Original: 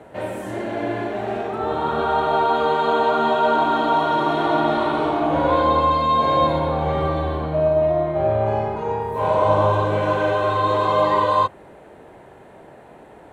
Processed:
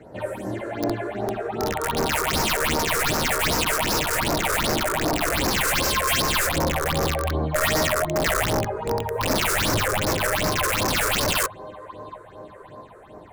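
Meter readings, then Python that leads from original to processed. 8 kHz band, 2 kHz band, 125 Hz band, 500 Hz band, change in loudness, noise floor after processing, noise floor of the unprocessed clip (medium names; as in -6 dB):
no reading, +5.5 dB, -1.5 dB, -6.5 dB, -2.5 dB, -45 dBFS, -45 dBFS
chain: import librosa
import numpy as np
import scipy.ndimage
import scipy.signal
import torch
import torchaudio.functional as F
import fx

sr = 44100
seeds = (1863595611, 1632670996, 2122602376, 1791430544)

y = fx.echo_feedback(x, sr, ms=711, feedback_pct=58, wet_db=-20.5)
y = (np.mod(10.0 ** (14.5 / 20.0) * y + 1.0, 2.0) - 1.0) / 10.0 ** (14.5 / 20.0)
y = fx.phaser_stages(y, sr, stages=6, low_hz=200.0, high_hz=3100.0, hz=2.6, feedback_pct=40)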